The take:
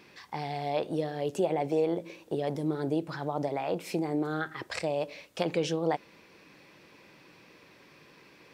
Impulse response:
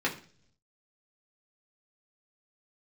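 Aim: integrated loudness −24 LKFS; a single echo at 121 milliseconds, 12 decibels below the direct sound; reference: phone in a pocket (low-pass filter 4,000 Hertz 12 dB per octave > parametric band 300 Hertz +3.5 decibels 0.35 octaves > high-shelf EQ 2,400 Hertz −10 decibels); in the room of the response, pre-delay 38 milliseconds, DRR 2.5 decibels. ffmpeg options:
-filter_complex "[0:a]aecho=1:1:121:0.251,asplit=2[link_01][link_02];[1:a]atrim=start_sample=2205,adelay=38[link_03];[link_02][link_03]afir=irnorm=-1:irlink=0,volume=-12dB[link_04];[link_01][link_04]amix=inputs=2:normalize=0,lowpass=4000,equalizer=frequency=300:width_type=o:width=0.35:gain=3.5,highshelf=frequency=2400:gain=-10,volume=5.5dB"

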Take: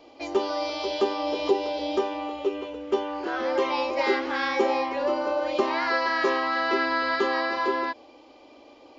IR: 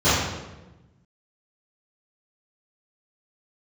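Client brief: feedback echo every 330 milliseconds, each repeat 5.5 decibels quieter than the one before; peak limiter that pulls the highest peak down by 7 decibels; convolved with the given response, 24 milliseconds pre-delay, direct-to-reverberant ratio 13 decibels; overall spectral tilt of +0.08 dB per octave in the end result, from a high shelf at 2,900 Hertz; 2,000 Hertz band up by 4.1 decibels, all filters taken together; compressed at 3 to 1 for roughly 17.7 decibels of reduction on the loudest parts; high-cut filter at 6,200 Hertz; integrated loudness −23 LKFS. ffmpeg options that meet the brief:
-filter_complex "[0:a]lowpass=6200,equalizer=frequency=2000:width_type=o:gain=3.5,highshelf=frequency=2900:gain=4.5,acompressor=threshold=-43dB:ratio=3,alimiter=level_in=9.5dB:limit=-24dB:level=0:latency=1,volume=-9.5dB,aecho=1:1:330|660|990|1320|1650|1980|2310:0.531|0.281|0.149|0.079|0.0419|0.0222|0.0118,asplit=2[link_01][link_02];[1:a]atrim=start_sample=2205,adelay=24[link_03];[link_02][link_03]afir=irnorm=-1:irlink=0,volume=-34.5dB[link_04];[link_01][link_04]amix=inputs=2:normalize=0,volume=18dB"

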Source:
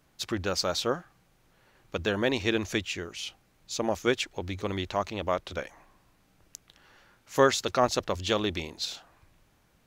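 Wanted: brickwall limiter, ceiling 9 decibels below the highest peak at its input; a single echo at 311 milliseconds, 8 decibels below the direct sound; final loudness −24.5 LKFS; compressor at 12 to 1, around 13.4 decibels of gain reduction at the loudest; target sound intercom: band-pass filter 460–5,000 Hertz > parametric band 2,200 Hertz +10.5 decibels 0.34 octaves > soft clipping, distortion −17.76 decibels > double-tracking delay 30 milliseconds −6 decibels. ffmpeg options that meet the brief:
ffmpeg -i in.wav -filter_complex "[0:a]acompressor=threshold=-29dB:ratio=12,alimiter=level_in=1dB:limit=-24dB:level=0:latency=1,volume=-1dB,highpass=460,lowpass=5000,equalizer=frequency=2200:width_type=o:width=0.34:gain=10.5,aecho=1:1:311:0.398,asoftclip=threshold=-28dB,asplit=2[link_01][link_02];[link_02]adelay=30,volume=-6dB[link_03];[link_01][link_03]amix=inputs=2:normalize=0,volume=14dB" out.wav

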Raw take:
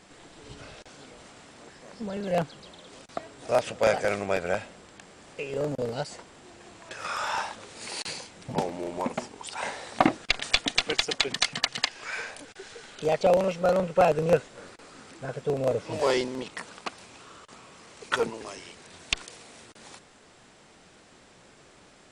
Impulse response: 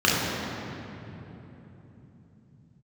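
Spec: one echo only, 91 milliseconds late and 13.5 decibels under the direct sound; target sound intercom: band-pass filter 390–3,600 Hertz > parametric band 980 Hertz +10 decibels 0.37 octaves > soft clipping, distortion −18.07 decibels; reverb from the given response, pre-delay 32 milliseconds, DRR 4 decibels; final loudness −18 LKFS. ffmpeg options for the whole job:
-filter_complex "[0:a]aecho=1:1:91:0.211,asplit=2[link_01][link_02];[1:a]atrim=start_sample=2205,adelay=32[link_03];[link_02][link_03]afir=irnorm=-1:irlink=0,volume=-24dB[link_04];[link_01][link_04]amix=inputs=2:normalize=0,highpass=390,lowpass=3600,equalizer=frequency=980:width_type=o:width=0.37:gain=10,asoftclip=threshold=-11.5dB,volume=10dB"

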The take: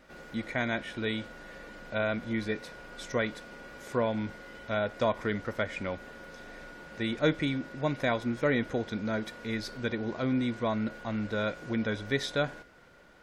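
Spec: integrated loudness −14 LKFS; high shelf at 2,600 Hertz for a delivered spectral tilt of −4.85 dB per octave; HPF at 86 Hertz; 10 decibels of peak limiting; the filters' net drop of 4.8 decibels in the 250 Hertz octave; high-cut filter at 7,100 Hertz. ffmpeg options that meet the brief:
ffmpeg -i in.wav -af "highpass=86,lowpass=7100,equalizer=frequency=250:width_type=o:gain=-5.5,highshelf=frequency=2600:gain=-8,volume=25dB,alimiter=limit=-0.5dB:level=0:latency=1" out.wav

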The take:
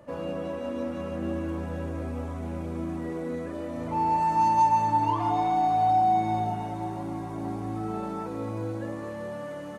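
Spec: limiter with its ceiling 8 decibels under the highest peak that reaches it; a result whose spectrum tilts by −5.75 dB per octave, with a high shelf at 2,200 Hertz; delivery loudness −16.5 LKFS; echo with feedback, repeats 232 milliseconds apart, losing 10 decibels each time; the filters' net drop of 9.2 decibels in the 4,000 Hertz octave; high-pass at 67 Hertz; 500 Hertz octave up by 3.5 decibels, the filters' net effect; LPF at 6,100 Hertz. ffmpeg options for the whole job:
ffmpeg -i in.wav -af "highpass=67,lowpass=6100,equalizer=frequency=500:width_type=o:gain=5,highshelf=frequency=2200:gain=-5.5,equalizer=frequency=4000:width_type=o:gain=-6.5,alimiter=limit=-21dB:level=0:latency=1,aecho=1:1:232|464|696|928:0.316|0.101|0.0324|0.0104,volume=13dB" out.wav

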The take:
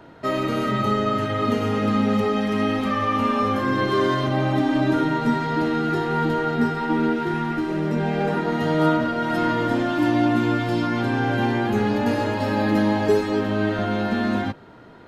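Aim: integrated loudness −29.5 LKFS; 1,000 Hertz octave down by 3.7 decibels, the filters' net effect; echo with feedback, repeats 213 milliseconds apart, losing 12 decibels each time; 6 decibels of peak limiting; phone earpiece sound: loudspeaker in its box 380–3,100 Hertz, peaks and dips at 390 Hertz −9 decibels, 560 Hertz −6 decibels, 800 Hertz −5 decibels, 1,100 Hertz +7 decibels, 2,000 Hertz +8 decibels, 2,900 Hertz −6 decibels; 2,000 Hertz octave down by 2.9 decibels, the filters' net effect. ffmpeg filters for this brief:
ffmpeg -i in.wav -af "equalizer=frequency=1000:width_type=o:gain=-5,equalizer=frequency=2000:width_type=o:gain=-6,alimiter=limit=-15.5dB:level=0:latency=1,highpass=380,equalizer=frequency=390:width_type=q:width=4:gain=-9,equalizer=frequency=560:width_type=q:width=4:gain=-6,equalizer=frequency=800:width_type=q:width=4:gain=-5,equalizer=frequency=1100:width_type=q:width=4:gain=7,equalizer=frequency=2000:width_type=q:width=4:gain=8,equalizer=frequency=2900:width_type=q:width=4:gain=-6,lowpass=frequency=3100:width=0.5412,lowpass=frequency=3100:width=1.3066,aecho=1:1:213|426|639:0.251|0.0628|0.0157,volume=0.5dB" out.wav

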